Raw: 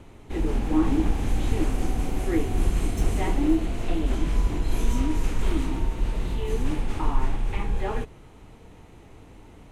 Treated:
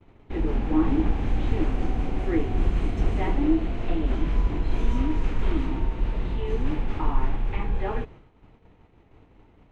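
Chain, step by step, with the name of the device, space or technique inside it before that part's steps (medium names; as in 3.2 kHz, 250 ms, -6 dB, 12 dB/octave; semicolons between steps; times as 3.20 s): hearing-loss simulation (low-pass 3.1 kHz 12 dB/octave; expander -40 dBFS)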